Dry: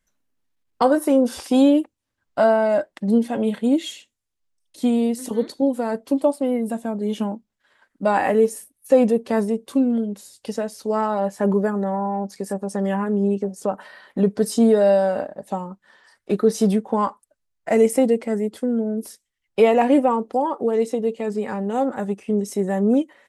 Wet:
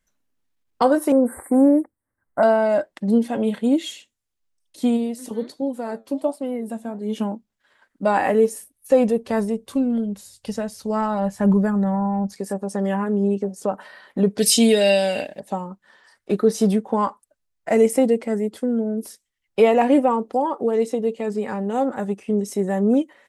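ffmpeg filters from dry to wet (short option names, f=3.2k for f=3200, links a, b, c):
-filter_complex "[0:a]asettb=1/sr,asplit=3[a][b][c];[a]atrim=end=1.124[d];[b]atrim=start=1.12:end=2.43,asetpts=PTS-STARTPTS,afade=t=in:d=0.004:c=qsin,afade=t=out:st=1.306:d=0.004:c=qsin,asuperstop=centerf=4200:order=20:qfactor=0.72[e];[c]atrim=start=2.426[f];[d][e]acrossfade=d=0.004:c1=hsin:c2=qsin[g];[g][f]acrossfade=d=0.004:c1=qsin:c2=hsin,asplit=3[h][i][j];[h]afade=t=out:st=4.96:d=0.02[k];[i]flanger=delay=4.5:depth=4.7:regen=78:speed=1.4:shape=sinusoidal,afade=t=in:st=4.96:d=0.02,afade=t=out:st=7.15:d=0.02[l];[j]afade=t=in:st=7.15:d=0.02[m];[k][l][m]amix=inputs=3:normalize=0,asettb=1/sr,asplit=3[n][o][p];[n]atrim=end=8.444[q];[o]atrim=start=8.44:end=12.33,asetpts=PTS-STARTPTS,afade=t=in:d=0.004:c=qsin,afade=t=out:st=3.886:d=0.004:c=qsin,asubboost=boost=11:cutoff=120[r];[p]atrim=start=12.326[s];[q][r]acrossfade=d=0.004:c1=hsin:c2=qsin[t];[t][s]acrossfade=d=0.004:c1=qsin:c2=hsin,asettb=1/sr,asplit=3[u][v][w];[u]atrim=end=14.384[x];[v]atrim=start=14.38:end=15.4,asetpts=PTS-STARTPTS,afade=t=in:d=0.004:c=qsin,afade=t=out:st=1.016:d=0.004:c=qsin,highshelf=f=1.8k:t=q:w=3:g=12.5[y];[w]atrim=start=15.396[z];[x][y]acrossfade=d=0.004:c1=hsin:c2=qsin[aa];[aa][z]acrossfade=d=0.004:c1=qsin:c2=hsin"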